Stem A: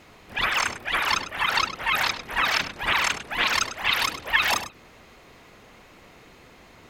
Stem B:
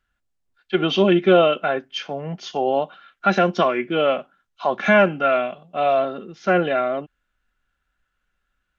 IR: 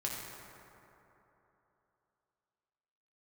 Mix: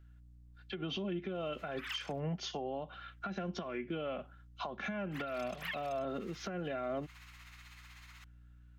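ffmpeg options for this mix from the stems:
-filter_complex "[0:a]highpass=frequency=1200:width=0.5412,highpass=frequency=1200:width=1.3066,acompressor=threshold=-38dB:ratio=2.5,tremolo=f=16:d=0.48,adelay=1350,volume=-0.5dB,asplit=3[link_01][link_02][link_03];[link_01]atrim=end=2.2,asetpts=PTS-STARTPTS,afade=type=out:start_time=2.196:duration=0.004:curve=hsin[link_04];[link_02]atrim=start=2.2:end=5.11,asetpts=PTS-STARTPTS,volume=0[link_05];[link_03]atrim=start=5.11,asetpts=PTS-STARTPTS,afade=type=in:duration=0.004:curve=hsin[link_06];[link_04][link_05][link_06]concat=n=3:v=0:a=1[link_07];[1:a]acompressor=threshold=-21dB:ratio=10,aeval=exprs='val(0)+0.00141*(sin(2*PI*60*n/s)+sin(2*PI*2*60*n/s)/2+sin(2*PI*3*60*n/s)/3+sin(2*PI*4*60*n/s)/4+sin(2*PI*5*60*n/s)/5)':channel_layout=same,volume=-1.5dB,asplit=2[link_08][link_09];[link_09]apad=whole_len=363454[link_10];[link_07][link_10]sidechaincompress=threshold=-30dB:ratio=8:attack=16:release=151[link_11];[link_11][link_08]amix=inputs=2:normalize=0,acrossover=split=240[link_12][link_13];[link_13]acompressor=threshold=-34dB:ratio=6[link_14];[link_12][link_14]amix=inputs=2:normalize=0,aeval=exprs='val(0)+0.000708*(sin(2*PI*60*n/s)+sin(2*PI*2*60*n/s)/2+sin(2*PI*3*60*n/s)/3+sin(2*PI*4*60*n/s)/4+sin(2*PI*5*60*n/s)/5)':channel_layout=same,alimiter=level_in=5.5dB:limit=-24dB:level=0:latency=1:release=233,volume=-5.5dB"

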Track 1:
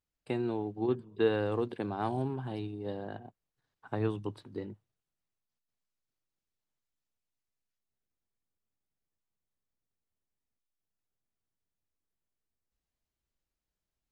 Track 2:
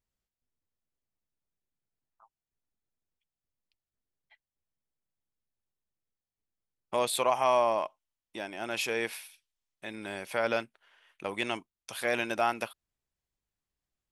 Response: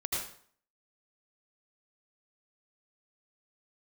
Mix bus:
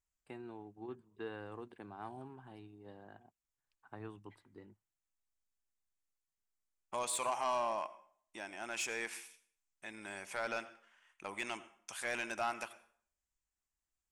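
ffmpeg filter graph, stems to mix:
-filter_complex "[0:a]volume=-8.5dB[link_01];[1:a]lowpass=frequency=7500:width_type=q:width=2.3,volume=-3.5dB,asplit=2[link_02][link_03];[link_03]volume=-19.5dB[link_04];[2:a]atrim=start_sample=2205[link_05];[link_04][link_05]afir=irnorm=-1:irlink=0[link_06];[link_01][link_02][link_06]amix=inputs=3:normalize=0,equalizer=frequency=125:width_type=o:width=1:gain=-10,equalizer=frequency=250:width_type=o:width=1:gain=-4,equalizer=frequency=500:width_type=o:width=1:gain=-8,equalizer=frequency=4000:width_type=o:width=1:gain=-9,asoftclip=type=tanh:threshold=-27.5dB"

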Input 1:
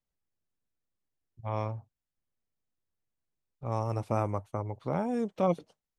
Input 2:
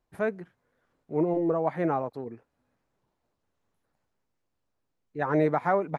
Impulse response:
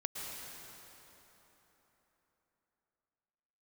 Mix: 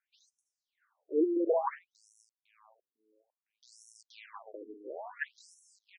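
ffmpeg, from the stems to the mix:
-filter_complex "[0:a]equalizer=frequency=77:width_type=o:width=1.5:gain=-3,acrusher=bits=4:dc=4:mix=0:aa=0.000001,aeval=exprs='(tanh(10*val(0)+0.3)-tanh(0.3))/10':channel_layout=same,volume=-0.5dB,asplit=3[link_01][link_02][link_03];[link_02]volume=-6.5dB[link_04];[1:a]lowshelf=frequency=230:gain=-11,volume=2.5dB[link_05];[link_03]apad=whole_len=263744[link_06];[link_05][link_06]sidechaingate=range=-21dB:threshold=-40dB:ratio=16:detection=peak[link_07];[link_04]aecho=0:1:505|1010|1515|2020|2525:1|0.34|0.116|0.0393|0.0134[link_08];[link_01][link_07][link_08]amix=inputs=3:normalize=0,afftfilt=real='re*between(b*sr/1024,320*pow(7800/320,0.5+0.5*sin(2*PI*0.58*pts/sr))/1.41,320*pow(7800/320,0.5+0.5*sin(2*PI*0.58*pts/sr))*1.41)':imag='im*between(b*sr/1024,320*pow(7800/320,0.5+0.5*sin(2*PI*0.58*pts/sr))/1.41,320*pow(7800/320,0.5+0.5*sin(2*PI*0.58*pts/sr))*1.41)':win_size=1024:overlap=0.75"

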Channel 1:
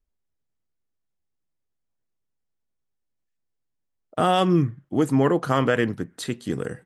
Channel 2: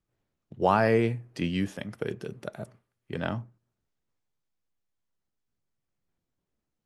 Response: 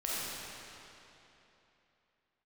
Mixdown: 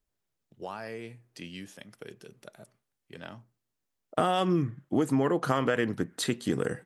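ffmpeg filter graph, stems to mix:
-filter_complex "[0:a]volume=2dB[link_01];[1:a]highshelf=frequency=2900:gain=11.5,acompressor=threshold=-25dB:ratio=2.5,volume=-11.5dB[link_02];[link_01][link_02]amix=inputs=2:normalize=0,lowshelf=frequency=96:gain=-9.5,acompressor=threshold=-22dB:ratio=6"

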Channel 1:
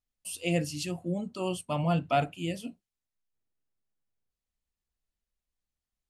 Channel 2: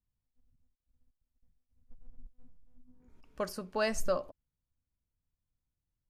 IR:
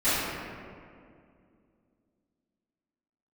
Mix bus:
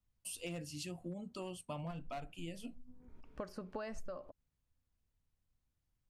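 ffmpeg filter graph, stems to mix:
-filter_complex "[0:a]volume=22dB,asoftclip=hard,volume=-22dB,volume=-4dB[link_01];[1:a]alimiter=limit=-24dB:level=0:latency=1:release=225,lowpass=frequency=2100:poles=1,volume=3dB,asplit=2[link_02][link_03];[link_03]apad=whole_len=268937[link_04];[link_01][link_04]sidechaincompress=threshold=-46dB:ratio=3:attack=16:release=167[link_05];[link_05][link_02]amix=inputs=2:normalize=0,acompressor=threshold=-41dB:ratio=6"

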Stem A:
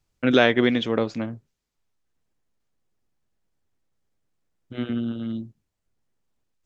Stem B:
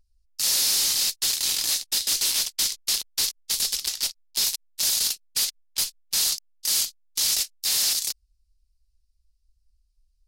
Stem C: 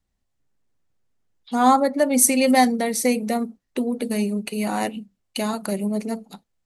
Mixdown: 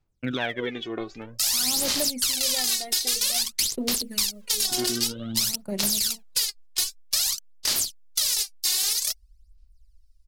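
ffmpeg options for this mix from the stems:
ffmpeg -i stem1.wav -i stem2.wav -i stem3.wav -filter_complex "[0:a]dynaudnorm=framelen=440:gausssize=5:maxgain=9.5dB,volume=-10.5dB[link_01];[1:a]adelay=1000,volume=1dB[link_02];[2:a]acrusher=bits=7:mix=0:aa=0.000001,agate=range=-29dB:threshold=-30dB:ratio=16:detection=peak,volume=-16.5dB[link_03];[link_01][link_02][link_03]amix=inputs=3:normalize=0,aphaser=in_gain=1:out_gain=1:delay=2.8:decay=0.74:speed=0.52:type=sinusoidal,acompressor=threshold=-21dB:ratio=6" out.wav

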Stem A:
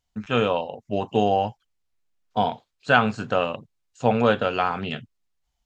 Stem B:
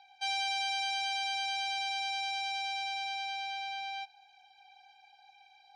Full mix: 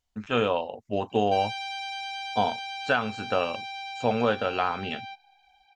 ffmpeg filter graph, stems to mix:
ffmpeg -i stem1.wav -i stem2.wav -filter_complex "[0:a]volume=-2dB[link_01];[1:a]bass=frequency=250:gain=14,treble=frequency=4000:gain=-6,adelay=1100,volume=-0.5dB[link_02];[link_01][link_02]amix=inputs=2:normalize=0,equalizer=frequency=150:width_type=o:width=0.41:gain=-11.5,alimiter=limit=-11dB:level=0:latency=1:release=417" out.wav

